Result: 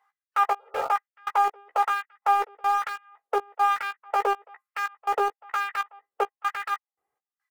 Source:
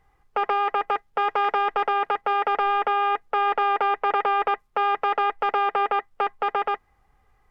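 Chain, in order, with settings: reverb removal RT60 1.5 s; spectral repair 0.62–0.84, 370–1500 Hz after; step gate "x..xx..xx" 142 bpm -24 dB; LFO high-pass sine 1.1 Hz 400–1800 Hz; in parallel at -7.5 dB: sample gate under -23.5 dBFS; on the sum: doubler 15 ms -6.5 dB; gain -6.5 dB

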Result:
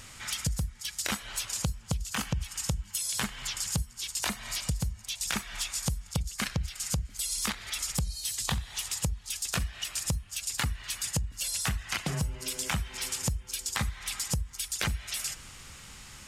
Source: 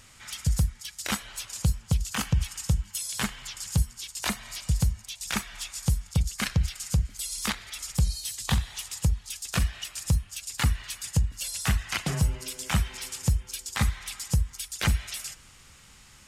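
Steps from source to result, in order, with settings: compressor 6:1, threshold -34 dBFS, peak gain reduction 15 dB; gain +5.5 dB

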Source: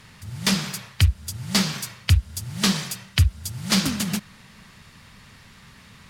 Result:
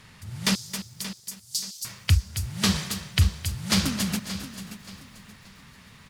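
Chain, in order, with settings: 0.55–1.85 inverse Chebyshev high-pass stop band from 1500 Hz, stop band 60 dB; on a send: feedback echo 0.578 s, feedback 32%, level -13 dB; on the sum: lo-fi delay 0.268 s, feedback 35%, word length 8-bit, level -11.5 dB; gain -2.5 dB

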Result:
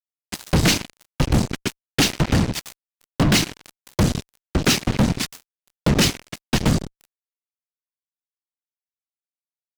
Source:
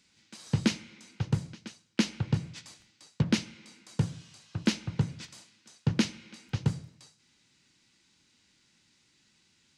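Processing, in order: whisperiser; fuzz box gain 39 dB, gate -44 dBFS

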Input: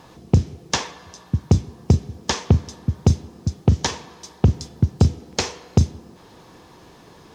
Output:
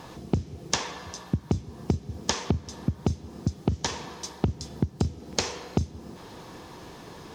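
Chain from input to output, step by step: compressor 12:1, threshold -25 dBFS, peak gain reduction 16 dB; gain +3 dB

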